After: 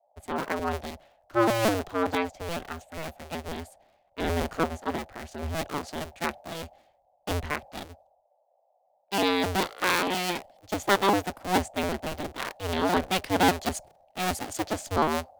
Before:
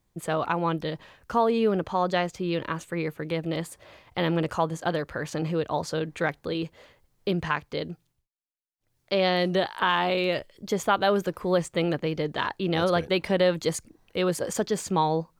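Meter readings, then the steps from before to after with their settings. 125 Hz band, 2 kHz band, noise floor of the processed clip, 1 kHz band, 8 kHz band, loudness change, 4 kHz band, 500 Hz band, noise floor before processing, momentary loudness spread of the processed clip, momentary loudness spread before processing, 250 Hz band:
−4.5 dB, 0.0 dB, −69 dBFS, −0.5 dB, +2.0 dB, −1.5 dB, −0.5 dB, −4.5 dB, −74 dBFS, 16 LU, 9 LU, −2.0 dB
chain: sub-harmonics by changed cycles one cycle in 2, inverted
noise in a band 540–830 Hz −45 dBFS
multiband upward and downward expander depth 100%
level −3 dB

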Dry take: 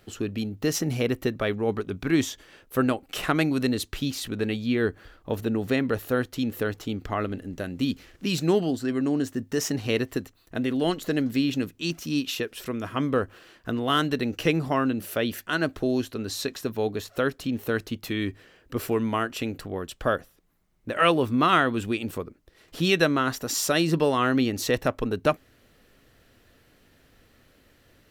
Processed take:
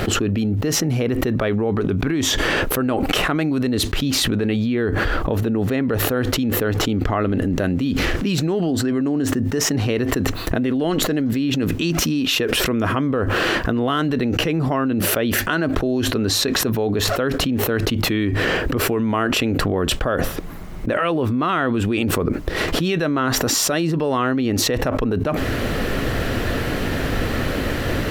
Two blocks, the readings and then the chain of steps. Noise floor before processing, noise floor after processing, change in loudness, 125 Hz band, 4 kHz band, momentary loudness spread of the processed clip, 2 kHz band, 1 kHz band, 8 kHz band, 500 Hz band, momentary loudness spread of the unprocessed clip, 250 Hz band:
−61 dBFS, −25 dBFS, +6.0 dB, +9.5 dB, +9.0 dB, 4 LU, +7.0 dB, +4.0 dB, +10.5 dB, +5.0 dB, 10 LU, +6.5 dB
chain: high-shelf EQ 3,200 Hz −10.5 dB
envelope flattener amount 100%
level −2 dB

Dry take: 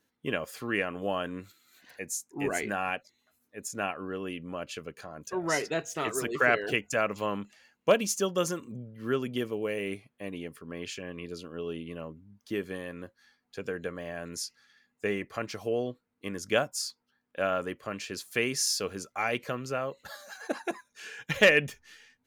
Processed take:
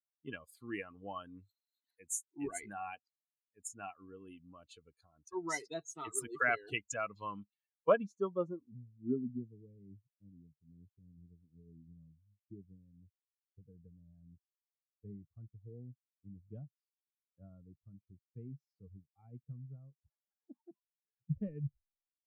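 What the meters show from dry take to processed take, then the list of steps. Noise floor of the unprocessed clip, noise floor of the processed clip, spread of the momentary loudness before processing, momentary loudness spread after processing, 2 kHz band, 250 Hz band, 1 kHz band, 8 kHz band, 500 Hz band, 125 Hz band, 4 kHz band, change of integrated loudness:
−78 dBFS, below −85 dBFS, 16 LU, 23 LU, −12.5 dB, −9.0 dB, −9.0 dB, −10.0 dB, −11.0 dB, −5.5 dB, −20.0 dB, −8.5 dB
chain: spectral dynamics exaggerated over time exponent 2
low-pass filter sweep 9,600 Hz → 150 Hz, 0:06.72–0:09.53
level −3.5 dB

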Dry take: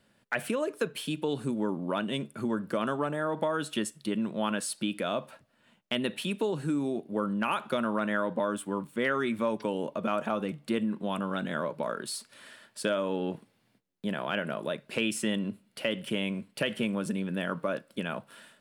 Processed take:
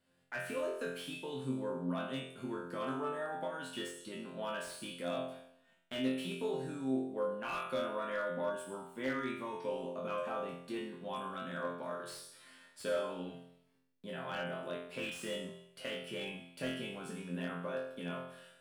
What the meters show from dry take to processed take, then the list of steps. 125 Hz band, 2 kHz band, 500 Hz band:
−9.0 dB, −8.0 dB, −6.5 dB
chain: resonators tuned to a chord F2 fifth, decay 0.73 s
slew-rate limiting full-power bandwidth 12 Hz
level +8 dB

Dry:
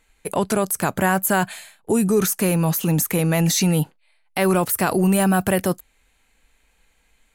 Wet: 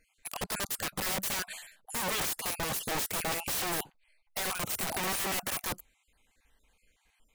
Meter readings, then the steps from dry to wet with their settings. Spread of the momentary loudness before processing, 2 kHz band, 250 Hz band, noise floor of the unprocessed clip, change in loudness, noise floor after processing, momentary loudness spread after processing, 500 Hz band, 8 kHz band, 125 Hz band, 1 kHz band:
9 LU, −9.0 dB, −23.0 dB, −64 dBFS, −12.0 dB, −74 dBFS, 9 LU, −18.0 dB, −8.5 dB, −23.0 dB, −12.0 dB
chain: time-frequency cells dropped at random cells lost 35%
wrap-around overflow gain 21.5 dB
notch filter 1,400 Hz, Q 25
level −5.5 dB

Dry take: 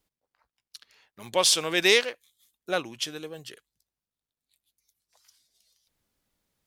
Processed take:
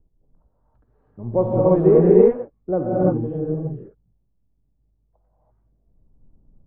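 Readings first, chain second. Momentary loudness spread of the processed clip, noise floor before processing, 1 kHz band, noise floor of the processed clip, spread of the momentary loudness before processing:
18 LU, below −85 dBFS, +4.5 dB, −67 dBFS, 19 LU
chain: Bessel low-pass filter 610 Hz, order 4
spectral tilt −4.5 dB per octave
reverb whose tail is shaped and stops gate 360 ms rising, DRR −6 dB
level +3.5 dB

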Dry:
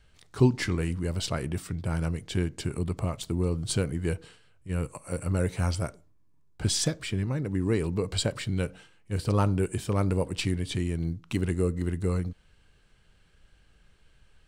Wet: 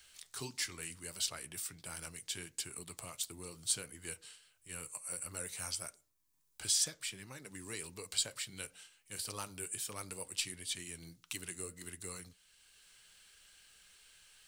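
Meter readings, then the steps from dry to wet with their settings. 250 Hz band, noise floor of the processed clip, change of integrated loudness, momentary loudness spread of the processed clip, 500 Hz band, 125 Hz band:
−23.5 dB, −74 dBFS, −10.0 dB, 21 LU, −20.0 dB, −26.5 dB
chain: first-order pre-emphasis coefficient 0.97
flanger 1.5 Hz, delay 2.2 ms, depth 6.3 ms, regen −65%
multiband upward and downward compressor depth 40%
level +7.5 dB

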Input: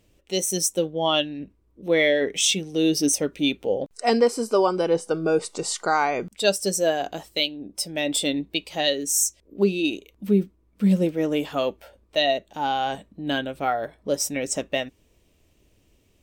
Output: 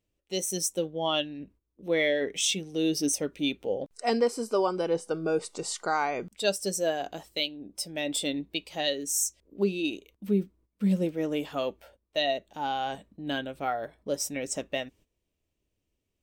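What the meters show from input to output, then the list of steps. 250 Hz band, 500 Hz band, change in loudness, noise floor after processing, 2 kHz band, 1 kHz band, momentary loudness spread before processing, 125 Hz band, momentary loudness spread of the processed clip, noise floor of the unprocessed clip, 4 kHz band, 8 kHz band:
−6.0 dB, −6.0 dB, −6.0 dB, −81 dBFS, −6.0 dB, −6.0 dB, 8 LU, −6.0 dB, 8 LU, −63 dBFS, −6.0 dB, −6.0 dB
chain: noise gate −50 dBFS, range −13 dB
level −6 dB

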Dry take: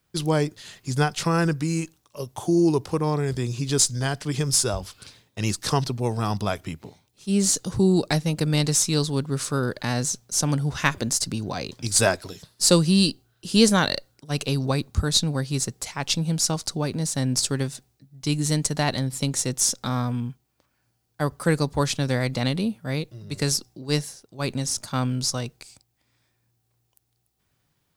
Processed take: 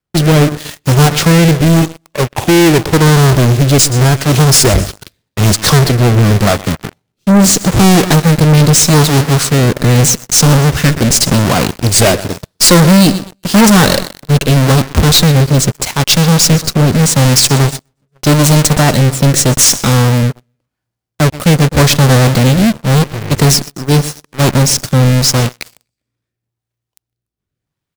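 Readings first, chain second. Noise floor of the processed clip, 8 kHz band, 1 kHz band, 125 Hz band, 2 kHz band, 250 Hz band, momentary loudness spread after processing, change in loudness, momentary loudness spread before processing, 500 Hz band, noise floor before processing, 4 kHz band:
−80 dBFS, +13.0 dB, +14.5 dB, +17.5 dB, +14.0 dB, +14.0 dB, 8 LU, +14.5 dB, 11 LU, +13.0 dB, −72 dBFS, +13.5 dB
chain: each half-wave held at its own peak
rotating-speaker cabinet horn 0.85 Hz
repeating echo 124 ms, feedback 41%, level −18.5 dB
leveller curve on the samples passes 5
level −1.5 dB

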